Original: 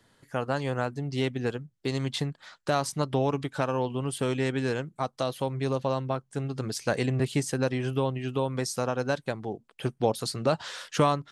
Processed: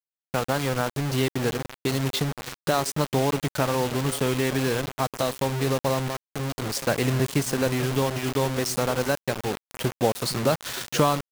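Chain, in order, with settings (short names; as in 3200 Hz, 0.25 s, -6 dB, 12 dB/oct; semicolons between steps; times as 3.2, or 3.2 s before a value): in parallel at +2 dB: compressor 5:1, threshold -34 dBFS, peak gain reduction 15 dB; on the sum: delay with a stepping band-pass 0.46 s, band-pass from 160 Hz, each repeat 1.4 oct, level -9.5 dB; 6.07–6.72 level quantiser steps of 15 dB; bit-crush 5-bit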